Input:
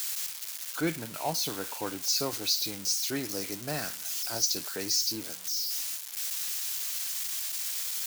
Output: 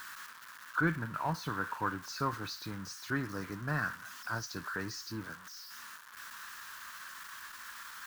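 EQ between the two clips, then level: tone controls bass +14 dB, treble -12 dB; band shelf 1300 Hz +16 dB 1.1 oct; -8.0 dB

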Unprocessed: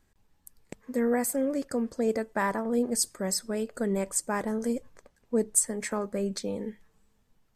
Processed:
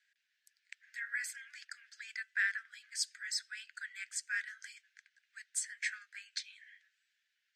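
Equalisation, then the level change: steep high-pass 1500 Hz 96 dB/oct; air absorption 170 m; high shelf 8400 Hz +4.5 dB; +4.5 dB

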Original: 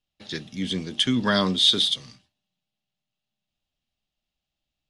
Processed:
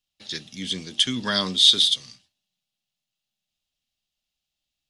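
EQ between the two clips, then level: bell 5100 Hz +8.5 dB 2.7 oct; high shelf 6700 Hz +7.5 dB; -6.0 dB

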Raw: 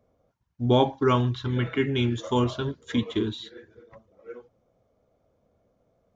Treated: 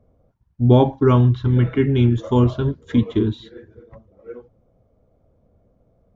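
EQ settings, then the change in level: tilt -3 dB/oct; +2.0 dB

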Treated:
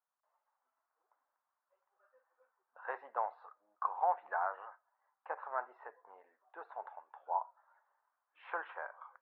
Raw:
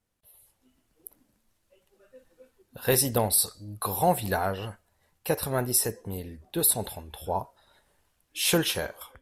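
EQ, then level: HPF 920 Hz 24 dB/oct; LPF 1300 Hz 24 dB/oct; air absorption 370 m; +2.5 dB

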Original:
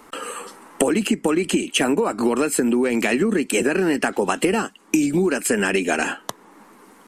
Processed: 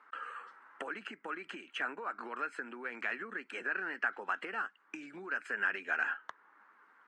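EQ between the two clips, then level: band-pass 1500 Hz, Q 3.7; air absorption 74 m; -4.5 dB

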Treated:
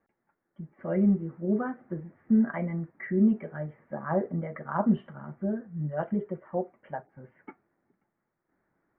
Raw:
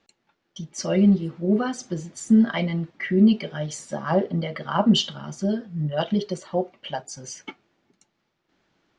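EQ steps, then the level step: steep low-pass 2000 Hz 48 dB/oct; -6.0 dB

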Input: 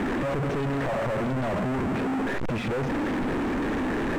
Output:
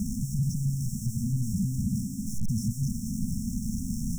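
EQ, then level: brick-wall FIR band-stop 240–5300 Hz; high shelf 2900 Hz +7 dB; high shelf 6900 Hz +6 dB; +3.5 dB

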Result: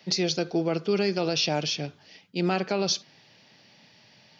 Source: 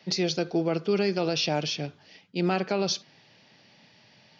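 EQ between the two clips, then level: high shelf 6300 Hz +7 dB; 0.0 dB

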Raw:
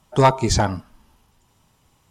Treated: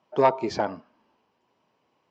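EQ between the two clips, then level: speaker cabinet 380–4900 Hz, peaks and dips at 820 Hz -5 dB, 1300 Hz -7 dB, 1900 Hz -4 dB, 3600 Hz -7 dB; high shelf 2700 Hz -12 dB; 0.0 dB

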